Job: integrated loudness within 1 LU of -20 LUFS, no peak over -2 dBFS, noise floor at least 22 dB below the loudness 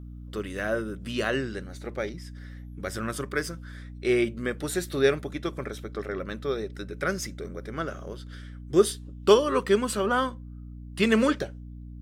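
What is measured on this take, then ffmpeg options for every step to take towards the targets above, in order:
hum 60 Hz; harmonics up to 300 Hz; hum level -39 dBFS; loudness -28.0 LUFS; peak -6.5 dBFS; loudness target -20.0 LUFS
-> -af "bandreject=f=60:t=h:w=4,bandreject=f=120:t=h:w=4,bandreject=f=180:t=h:w=4,bandreject=f=240:t=h:w=4,bandreject=f=300:t=h:w=4"
-af "volume=8dB,alimiter=limit=-2dB:level=0:latency=1"

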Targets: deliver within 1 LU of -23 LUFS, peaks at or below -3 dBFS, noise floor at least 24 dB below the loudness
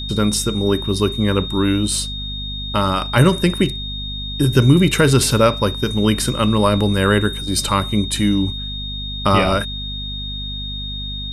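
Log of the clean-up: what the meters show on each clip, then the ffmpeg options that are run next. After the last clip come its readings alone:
hum 50 Hz; harmonics up to 250 Hz; hum level -26 dBFS; steady tone 3700 Hz; tone level -27 dBFS; loudness -18.0 LUFS; peak -1.0 dBFS; loudness target -23.0 LUFS
-> -af "bandreject=f=50:t=h:w=4,bandreject=f=100:t=h:w=4,bandreject=f=150:t=h:w=4,bandreject=f=200:t=h:w=4,bandreject=f=250:t=h:w=4"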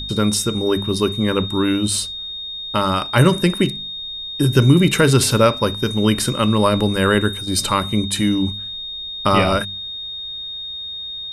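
hum none; steady tone 3700 Hz; tone level -27 dBFS
-> -af "bandreject=f=3.7k:w=30"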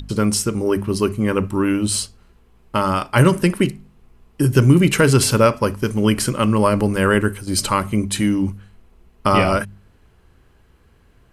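steady tone none; loudness -18.0 LUFS; peak -1.5 dBFS; loudness target -23.0 LUFS
-> -af "volume=-5dB"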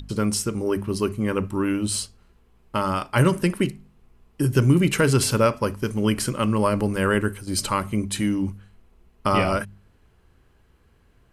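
loudness -23.0 LUFS; peak -6.5 dBFS; noise floor -59 dBFS

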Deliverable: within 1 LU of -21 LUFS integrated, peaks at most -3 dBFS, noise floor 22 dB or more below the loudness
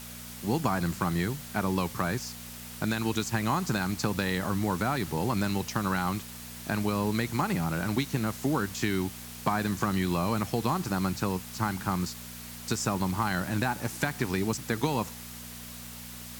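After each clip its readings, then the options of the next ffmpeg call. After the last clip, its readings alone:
hum 60 Hz; harmonics up to 240 Hz; hum level -43 dBFS; noise floor -43 dBFS; noise floor target -52 dBFS; loudness -30.0 LUFS; peak -14.5 dBFS; loudness target -21.0 LUFS
-> -af "bandreject=f=60:t=h:w=4,bandreject=f=120:t=h:w=4,bandreject=f=180:t=h:w=4,bandreject=f=240:t=h:w=4"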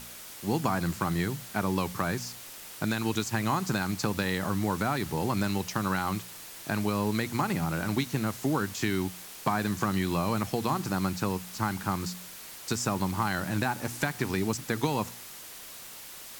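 hum none; noise floor -45 dBFS; noise floor target -52 dBFS
-> -af "afftdn=nr=7:nf=-45"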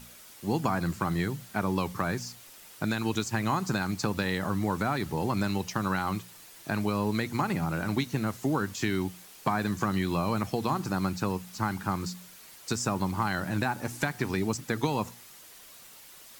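noise floor -51 dBFS; noise floor target -53 dBFS
-> -af "afftdn=nr=6:nf=-51"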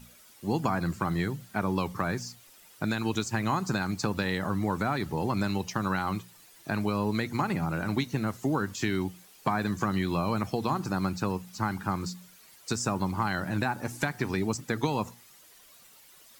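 noise floor -56 dBFS; loudness -30.5 LUFS; peak -15.0 dBFS; loudness target -21.0 LUFS
-> -af "volume=9.5dB"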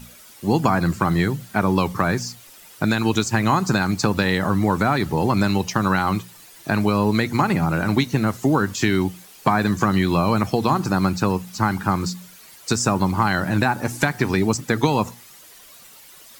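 loudness -21.0 LUFS; peak -5.5 dBFS; noise floor -46 dBFS

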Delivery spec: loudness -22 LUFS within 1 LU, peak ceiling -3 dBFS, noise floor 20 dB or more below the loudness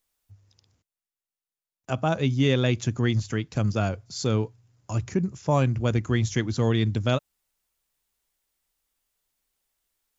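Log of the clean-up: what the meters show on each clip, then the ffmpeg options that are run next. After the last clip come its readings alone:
loudness -25.5 LUFS; peak -9.0 dBFS; loudness target -22.0 LUFS
-> -af "volume=3.5dB"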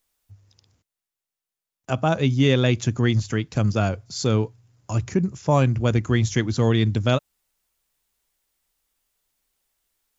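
loudness -22.0 LUFS; peak -5.5 dBFS; noise floor -88 dBFS

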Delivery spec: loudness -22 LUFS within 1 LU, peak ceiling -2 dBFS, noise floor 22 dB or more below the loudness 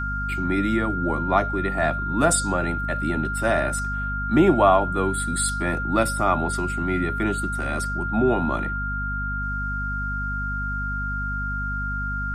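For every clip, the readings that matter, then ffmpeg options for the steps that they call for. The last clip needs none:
hum 50 Hz; harmonics up to 250 Hz; hum level -27 dBFS; steady tone 1400 Hz; tone level -27 dBFS; loudness -23.5 LUFS; peak -5.0 dBFS; loudness target -22.0 LUFS
-> -af "bandreject=f=50:t=h:w=6,bandreject=f=100:t=h:w=6,bandreject=f=150:t=h:w=6,bandreject=f=200:t=h:w=6,bandreject=f=250:t=h:w=6"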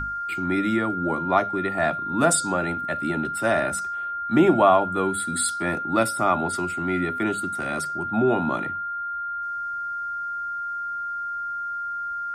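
hum none; steady tone 1400 Hz; tone level -27 dBFS
-> -af "bandreject=f=1.4k:w=30"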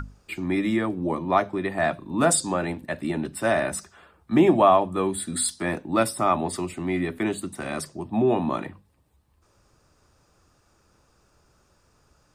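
steady tone none; loudness -24.5 LUFS; peak -5.5 dBFS; loudness target -22.0 LUFS
-> -af "volume=2.5dB"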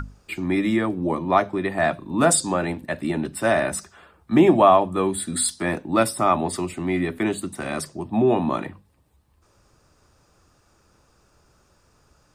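loudness -22.0 LUFS; peak -3.0 dBFS; noise floor -62 dBFS

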